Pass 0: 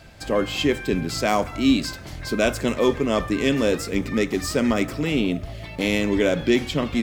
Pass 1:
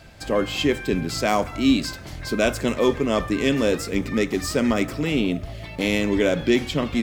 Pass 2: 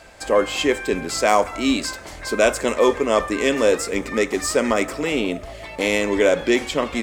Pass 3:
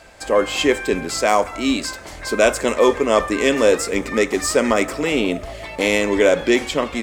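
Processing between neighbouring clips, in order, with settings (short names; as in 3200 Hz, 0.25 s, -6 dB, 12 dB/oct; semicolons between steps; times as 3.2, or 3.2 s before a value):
nothing audible
graphic EQ 125/500/1000/2000/8000 Hz -10/+7/+7/+5/+10 dB; gain -2.5 dB
AGC gain up to 5 dB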